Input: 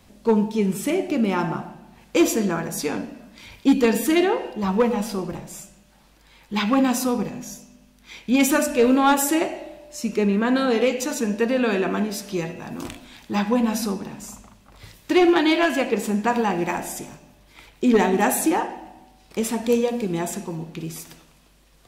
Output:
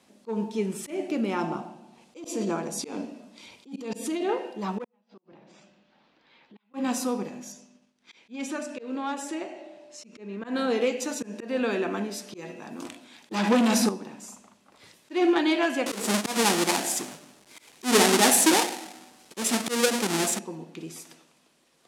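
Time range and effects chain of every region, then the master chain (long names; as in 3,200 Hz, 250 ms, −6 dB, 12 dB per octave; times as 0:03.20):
0:01.41–0:04.29: low-pass filter 11,000 Hz + parametric band 1,700 Hz −8.5 dB 0.64 octaves + compressor whose output falls as the input rises −22 dBFS
0:04.84–0:06.74: low-pass filter 4,200 Hz 24 dB per octave + gate with flip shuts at −17 dBFS, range −39 dB + downward compressor 5 to 1, threshold −43 dBFS
0:07.52–0:10.44: low-pass filter 7,000 Hz + downward expander −49 dBFS + downward compressor 1.5 to 1, threshold −38 dBFS
0:13.31–0:13.89: leveller curve on the samples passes 3 + multiband upward and downward compressor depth 70%
0:15.86–0:20.39: each half-wave held at its own peak + high-shelf EQ 3,000 Hz +10 dB
whole clip: Chebyshev band-pass filter 260–9,800 Hz, order 2; volume swells 158 ms; level −4.5 dB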